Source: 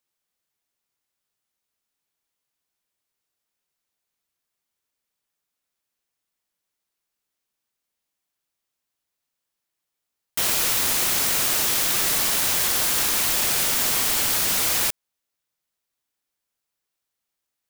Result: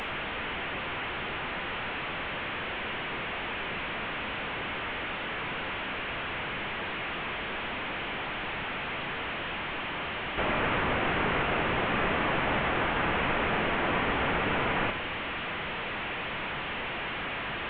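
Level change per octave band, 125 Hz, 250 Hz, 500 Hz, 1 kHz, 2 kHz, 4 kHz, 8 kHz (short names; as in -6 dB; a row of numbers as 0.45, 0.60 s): +6.0 dB, +6.5 dB, +6.0 dB, +5.5 dB, +3.5 dB, -7.0 dB, under -40 dB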